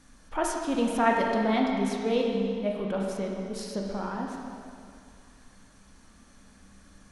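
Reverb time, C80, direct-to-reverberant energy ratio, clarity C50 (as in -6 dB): 2.3 s, 2.5 dB, -1.0 dB, 1.5 dB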